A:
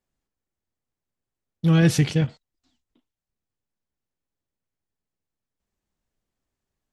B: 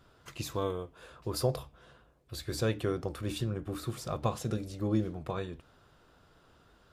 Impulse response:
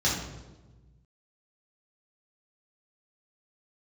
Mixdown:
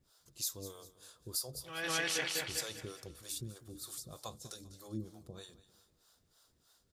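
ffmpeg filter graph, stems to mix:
-filter_complex "[0:a]highpass=850,volume=1dB,asplit=2[a][b];[b]volume=-3dB[c];[1:a]acrossover=split=500[d][e];[d]aeval=exprs='val(0)*(1-1/2+1/2*cos(2*PI*3.2*n/s))':c=same[f];[e]aeval=exprs='val(0)*(1-1/2-1/2*cos(2*PI*3.2*n/s))':c=same[g];[f][g]amix=inputs=2:normalize=0,aexciter=amount=10:drive=3.2:freq=3.7k,volume=-10dB,asplit=3[h][i][j];[i]volume=-17dB[k];[j]apad=whole_len=305498[l];[a][l]sidechaincompress=threshold=-55dB:ratio=4:attack=29:release=390[m];[c][k]amix=inputs=2:normalize=0,aecho=0:1:198|396|594|792|990|1188:1|0.4|0.16|0.064|0.0256|0.0102[n];[m][h][n]amix=inputs=3:normalize=0,alimiter=limit=-23.5dB:level=0:latency=1:release=173"

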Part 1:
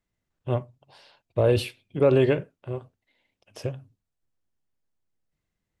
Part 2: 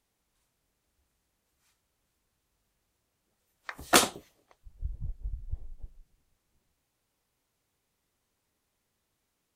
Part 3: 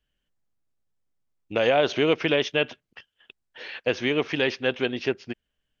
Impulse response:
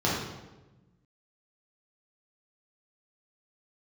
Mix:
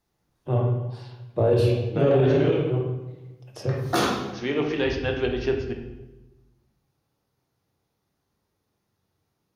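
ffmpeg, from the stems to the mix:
-filter_complex "[0:a]deesser=0.65,volume=0.5dB,asplit=3[a][b][c];[b]volume=-13dB[d];[1:a]equalizer=f=7.7k:t=o:w=0.23:g=-13,volume=-6dB,asplit=2[e][f];[f]volume=-6dB[g];[2:a]adelay=400,volume=-5.5dB,asplit=3[h][i][j];[h]atrim=end=2.53,asetpts=PTS-STARTPTS,afade=t=out:st=2.526:d=0.004:c=hsin[k];[i]atrim=start=2.53:end=4.33,asetpts=PTS-STARTPTS,volume=0[l];[j]atrim=start=4.33,asetpts=PTS-STARTPTS,afade=t=in:d=0.004:c=hsin[m];[k][l][m]concat=n=3:v=0:a=1,asplit=2[n][o];[o]volume=-12.5dB[p];[c]apad=whole_len=273452[q];[n][q]sidechaincompress=threshold=-34dB:ratio=8:attack=16:release=1060[r];[a][e]amix=inputs=2:normalize=0,acompressor=threshold=-49dB:ratio=1.5,volume=0dB[s];[3:a]atrim=start_sample=2205[t];[d][g][p]amix=inputs=3:normalize=0[u];[u][t]afir=irnorm=-1:irlink=0[v];[r][s][v]amix=inputs=3:normalize=0,alimiter=limit=-11.5dB:level=0:latency=1:release=51"

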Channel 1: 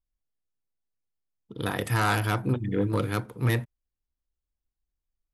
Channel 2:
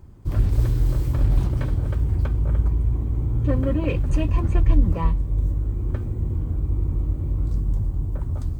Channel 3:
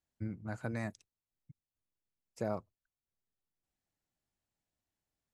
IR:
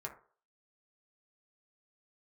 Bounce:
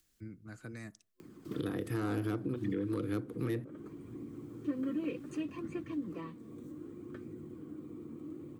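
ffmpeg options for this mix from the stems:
-filter_complex "[0:a]volume=1.5dB,asplit=2[a][b];[1:a]highpass=f=190:w=0.5412,highpass=f=190:w=1.3066,acompressor=mode=upward:threshold=-31dB:ratio=2.5,flanger=delay=0.4:depth=4.1:regen=64:speed=0.66:shape=sinusoidal,adelay=1200,volume=-7.5dB[c];[2:a]highshelf=f=3k:g=9,acompressor=mode=upward:threshold=-51dB:ratio=2.5,volume=-9dB,asplit=2[d][e];[e]volume=-14dB[f];[b]apad=whole_len=235370[g];[d][g]sidechaincompress=threshold=-44dB:ratio=8:attack=16:release=555[h];[3:a]atrim=start_sample=2205[i];[f][i]afir=irnorm=-1:irlink=0[j];[a][c][h][j]amix=inputs=4:normalize=0,superequalizer=6b=1.78:8b=0.447:9b=0.355,acrossover=split=220|690[k][l][m];[k]acompressor=threshold=-39dB:ratio=4[n];[l]acompressor=threshold=-30dB:ratio=4[o];[m]acompressor=threshold=-47dB:ratio=4[p];[n][o][p]amix=inputs=3:normalize=0,alimiter=level_in=1.5dB:limit=-24dB:level=0:latency=1:release=198,volume=-1.5dB"

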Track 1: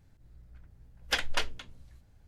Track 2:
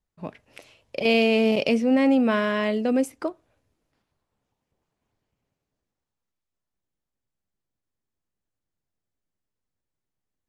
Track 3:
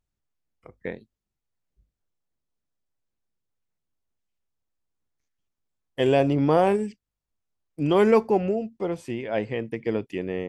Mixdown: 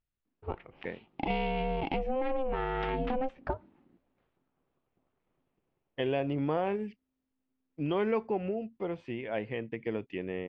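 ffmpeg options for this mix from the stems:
-filter_complex "[0:a]adelay=1700,volume=-4.5dB[a];[1:a]equalizer=f=1.9k:t=o:w=0.77:g=-3,asoftclip=type=tanh:threshold=-12dB,adelay=250,volume=2dB[b];[2:a]aemphasis=mode=production:type=75kf,acompressor=threshold=-23dB:ratio=2,volume=-6.5dB[c];[a][b]amix=inputs=2:normalize=0,aeval=exprs='val(0)*sin(2*PI*260*n/s)':c=same,acompressor=threshold=-27dB:ratio=12,volume=0dB[d];[c][d]amix=inputs=2:normalize=0,lowpass=f=3k:w=0.5412,lowpass=f=3k:w=1.3066"

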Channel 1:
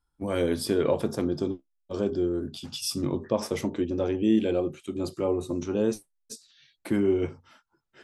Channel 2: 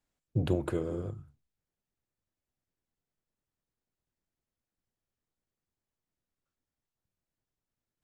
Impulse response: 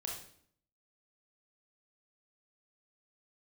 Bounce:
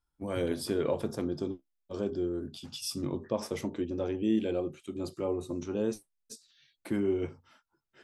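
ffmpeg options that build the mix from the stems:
-filter_complex "[0:a]volume=-5.5dB[a];[1:a]volume=-15.5dB[b];[a][b]amix=inputs=2:normalize=0"

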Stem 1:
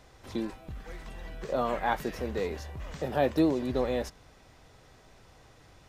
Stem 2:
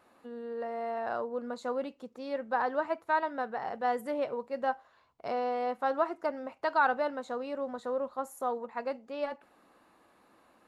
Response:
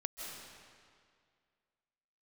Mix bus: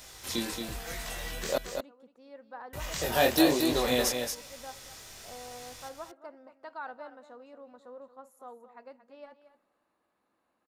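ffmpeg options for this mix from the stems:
-filter_complex "[0:a]crystalizer=i=10:c=0,flanger=delay=18.5:depth=7.2:speed=1.1,volume=1.5dB,asplit=3[a][b][c];[a]atrim=end=1.58,asetpts=PTS-STARTPTS,afade=t=out:st=1.576:d=0.004:c=hsin[d];[b]atrim=start=1.58:end=2.73,asetpts=PTS-STARTPTS,volume=0[e];[c]atrim=start=2.73,asetpts=PTS-STARTPTS,afade=t=in:d=0.004:c=hsin[f];[d][e][f]concat=n=3:v=0:a=1,asplit=2[g][h];[h]volume=-6dB[i];[1:a]volume=-15dB,asplit=3[j][k][l];[k]volume=-23.5dB[m];[l]volume=-12.5dB[n];[2:a]atrim=start_sample=2205[o];[m][o]afir=irnorm=-1:irlink=0[p];[i][n]amix=inputs=2:normalize=0,aecho=0:1:227:1[q];[g][j][p][q]amix=inputs=4:normalize=0"

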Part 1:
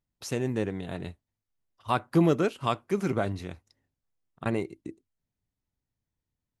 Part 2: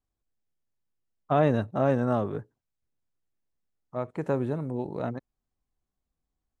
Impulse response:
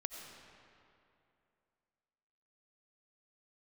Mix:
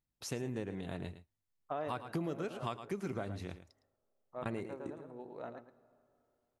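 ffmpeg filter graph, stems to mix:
-filter_complex "[0:a]volume=-4.5dB,asplit=3[a][b][c];[b]volume=-13.5dB[d];[1:a]bass=f=250:g=-14,treble=f=4k:g=-3,adelay=400,volume=-1dB,asplit=3[e][f][g];[f]volume=-22.5dB[h];[g]volume=-19dB[i];[c]apad=whole_len=308736[j];[e][j]sidechaincompress=threshold=-47dB:ratio=8:attack=5.1:release=1350[k];[2:a]atrim=start_sample=2205[l];[h][l]afir=irnorm=-1:irlink=0[m];[d][i]amix=inputs=2:normalize=0,aecho=0:1:110:1[n];[a][k][m][n]amix=inputs=4:normalize=0,acompressor=threshold=-35dB:ratio=5"

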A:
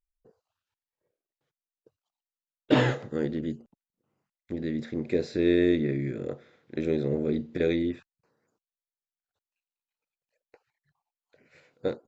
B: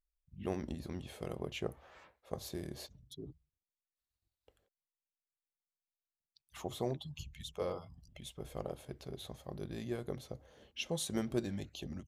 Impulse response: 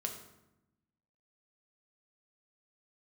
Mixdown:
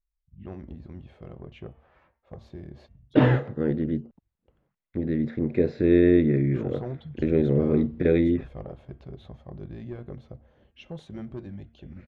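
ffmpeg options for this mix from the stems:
-filter_complex "[0:a]adelay=450,volume=-2dB[a];[1:a]bandreject=f=450:w=12,bandreject=f=228.6:t=h:w=4,bandreject=f=457.2:t=h:w=4,bandreject=f=685.8:t=h:w=4,bandreject=f=914.4:t=h:w=4,bandreject=f=1.143k:t=h:w=4,bandreject=f=1.3716k:t=h:w=4,bandreject=f=1.6002k:t=h:w=4,bandreject=f=1.8288k:t=h:w=4,bandreject=f=2.0574k:t=h:w=4,bandreject=f=2.286k:t=h:w=4,bandreject=f=2.5146k:t=h:w=4,bandreject=f=2.7432k:t=h:w=4,bandreject=f=2.9718k:t=h:w=4,bandreject=f=3.2004k:t=h:w=4,bandreject=f=3.429k:t=h:w=4,asoftclip=type=tanh:threshold=-28dB,volume=-3.5dB[b];[a][b]amix=inputs=2:normalize=0,lowpass=2.3k,lowshelf=f=190:g=9,dynaudnorm=f=530:g=11:m=5dB"

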